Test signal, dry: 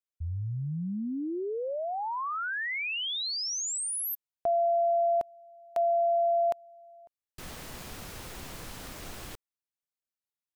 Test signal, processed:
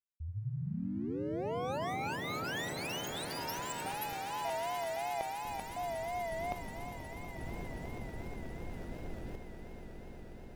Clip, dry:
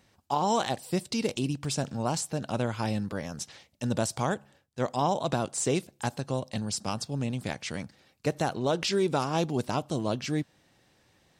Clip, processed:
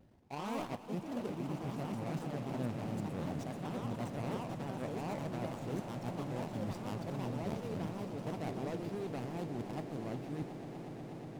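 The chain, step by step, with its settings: median filter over 41 samples; reverse; compression 8:1, threshold -43 dBFS; reverse; ever faster or slower copies 114 ms, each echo +3 st, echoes 2; echo with a slow build-up 121 ms, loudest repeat 8, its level -15 dB; vibrato 2.8 Hz 82 cents; trim +4 dB

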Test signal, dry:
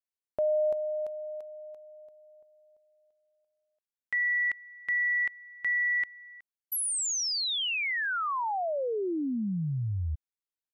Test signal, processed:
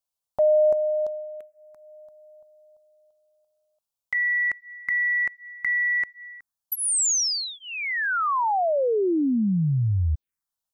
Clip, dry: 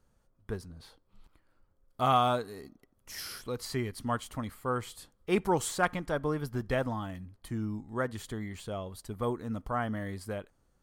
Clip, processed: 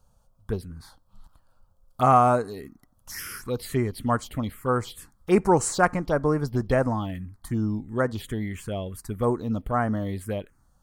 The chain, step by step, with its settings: touch-sensitive phaser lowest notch 330 Hz, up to 3.4 kHz, full sweep at -28 dBFS; trim +8.5 dB

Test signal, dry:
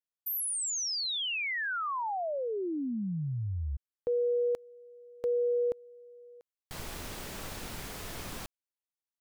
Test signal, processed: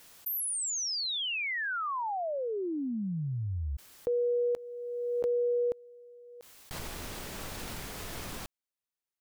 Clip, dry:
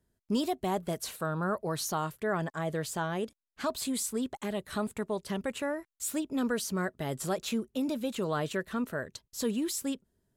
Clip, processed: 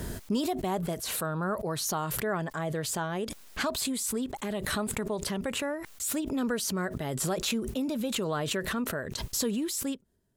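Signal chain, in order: swell ahead of each attack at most 25 dB/s

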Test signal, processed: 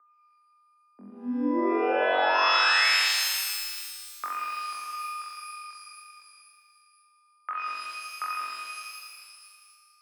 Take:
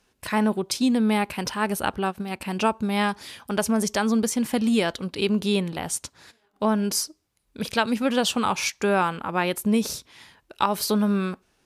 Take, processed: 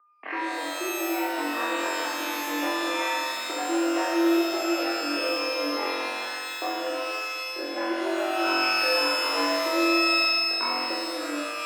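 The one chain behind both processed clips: one-sided wavefolder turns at -18.5 dBFS; gate -55 dBFS, range -32 dB; compression 6:1, threshold -33 dBFS; flutter echo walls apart 3.8 m, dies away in 1.5 s; whistle 1.1 kHz -59 dBFS; mistuned SSB +110 Hz 160–2300 Hz; pitch-shifted reverb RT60 1.9 s, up +12 st, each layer -2 dB, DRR 3.5 dB

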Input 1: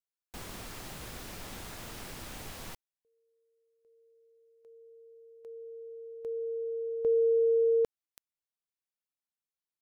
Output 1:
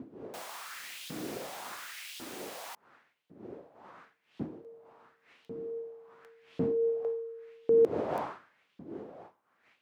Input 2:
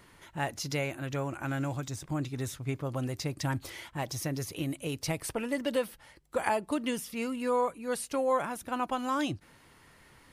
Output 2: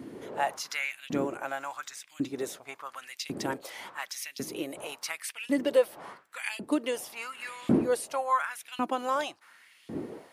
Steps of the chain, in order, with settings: wind noise 150 Hz -31 dBFS; LFO high-pass saw up 0.91 Hz 240–3400 Hz

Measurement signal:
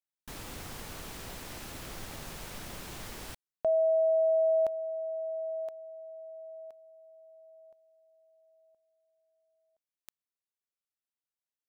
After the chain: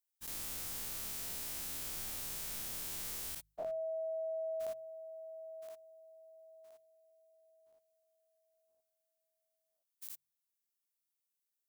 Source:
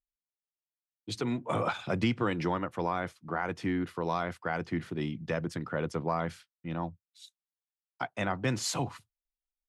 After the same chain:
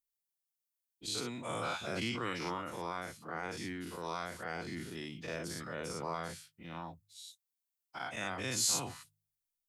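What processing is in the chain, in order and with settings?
every event in the spectrogram widened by 120 ms; pre-emphasis filter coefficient 0.8; de-hum 51.17 Hz, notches 3

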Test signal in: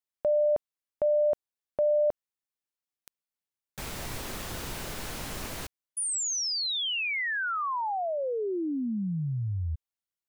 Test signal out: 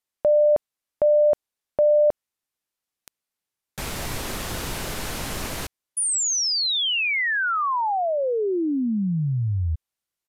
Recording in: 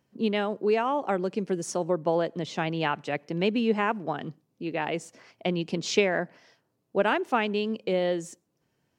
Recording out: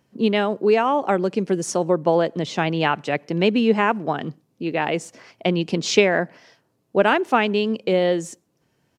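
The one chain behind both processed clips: resampled via 32 kHz; trim +7 dB

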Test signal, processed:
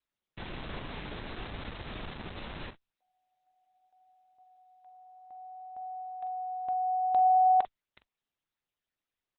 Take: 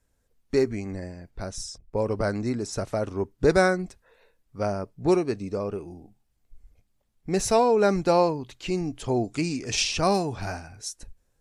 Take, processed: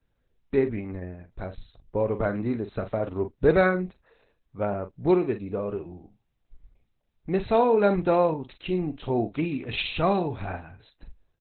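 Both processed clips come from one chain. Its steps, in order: vibrato 0.57 Hz 5.2 cents; doubling 44 ms -10.5 dB; Opus 8 kbps 48 kHz

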